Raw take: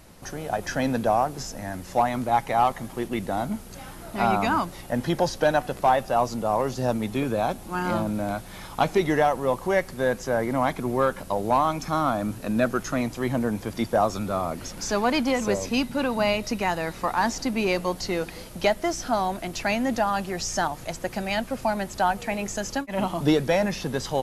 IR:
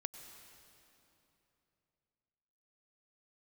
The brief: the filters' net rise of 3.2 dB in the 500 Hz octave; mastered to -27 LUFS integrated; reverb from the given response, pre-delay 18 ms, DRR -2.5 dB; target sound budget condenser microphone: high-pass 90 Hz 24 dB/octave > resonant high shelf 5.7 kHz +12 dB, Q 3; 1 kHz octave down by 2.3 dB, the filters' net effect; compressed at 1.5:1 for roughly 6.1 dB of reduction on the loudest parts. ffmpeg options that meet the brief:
-filter_complex "[0:a]equalizer=f=500:t=o:g=6,equalizer=f=1000:t=o:g=-6,acompressor=threshold=0.0282:ratio=1.5,asplit=2[s0][s1];[1:a]atrim=start_sample=2205,adelay=18[s2];[s1][s2]afir=irnorm=-1:irlink=0,volume=1.68[s3];[s0][s3]amix=inputs=2:normalize=0,highpass=f=90:w=0.5412,highpass=f=90:w=1.3066,highshelf=f=5700:t=q:w=3:g=12,volume=0.631"

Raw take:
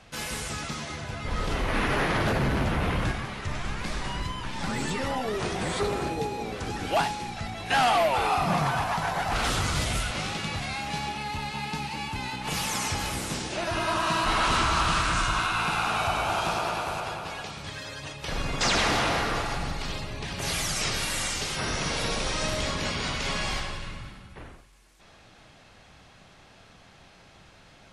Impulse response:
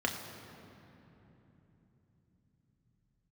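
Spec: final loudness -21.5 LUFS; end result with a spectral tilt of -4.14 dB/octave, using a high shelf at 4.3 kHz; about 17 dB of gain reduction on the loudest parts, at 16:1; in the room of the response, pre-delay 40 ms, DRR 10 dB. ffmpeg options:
-filter_complex "[0:a]highshelf=f=4300:g=-6,acompressor=threshold=0.0126:ratio=16,asplit=2[s0][s1];[1:a]atrim=start_sample=2205,adelay=40[s2];[s1][s2]afir=irnorm=-1:irlink=0,volume=0.133[s3];[s0][s3]amix=inputs=2:normalize=0,volume=10"

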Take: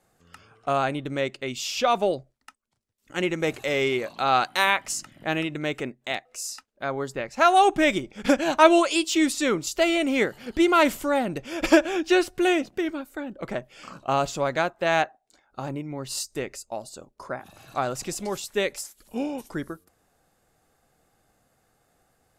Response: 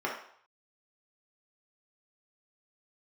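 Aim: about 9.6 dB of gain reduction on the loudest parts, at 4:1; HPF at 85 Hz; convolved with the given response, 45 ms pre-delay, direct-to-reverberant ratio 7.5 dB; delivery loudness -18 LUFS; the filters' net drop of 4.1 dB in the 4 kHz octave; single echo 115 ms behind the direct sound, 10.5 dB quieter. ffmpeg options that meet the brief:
-filter_complex "[0:a]highpass=85,equalizer=f=4000:t=o:g=-5.5,acompressor=threshold=0.0794:ratio=4,aecho=1:1:115:0.299,asplit=2[s0][s1];[1:a]atrim=start_sample=2205,adelay=45[s2];[s1][s2]afir=irnorm=-1:irlink=0,volume=0.158[s3];[s0][s3]amix=inputs=2:normalize=0,volume=3.16"

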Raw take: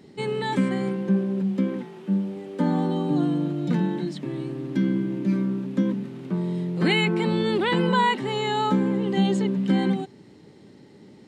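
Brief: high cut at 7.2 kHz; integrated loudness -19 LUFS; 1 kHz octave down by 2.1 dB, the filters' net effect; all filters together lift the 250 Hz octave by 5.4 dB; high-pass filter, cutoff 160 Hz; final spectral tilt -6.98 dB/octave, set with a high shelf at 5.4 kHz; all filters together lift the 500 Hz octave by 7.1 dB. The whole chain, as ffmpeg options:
-af "highpass=160,lowpass=7200,equalizer=f=250:t=o:g=7.5,equalizer=f=500:t=o:g=7,equalizer=f=1000:t=o:g=-4.5,highshelf=f=5400:g=-8.5,volume=1.12"

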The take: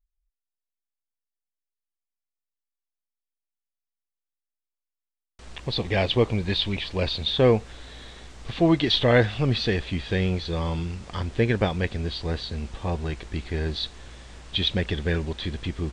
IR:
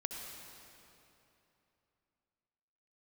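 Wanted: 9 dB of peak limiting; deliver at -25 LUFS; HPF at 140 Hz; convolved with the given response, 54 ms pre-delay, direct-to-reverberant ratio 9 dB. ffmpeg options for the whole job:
-filter_complex "[0:a]highpass=140,alimiter=limit=0.2:level=0:latency=1,asplit=2[s0][s1];[1:a]atrim=start_sample=2205,adelay=54[s2];[s1][s2]afir=irnorm=-1:irlink=0,volume=0.335[s3];[s0][s3]amix=inputs=2:normalize=0,volume=1.41"

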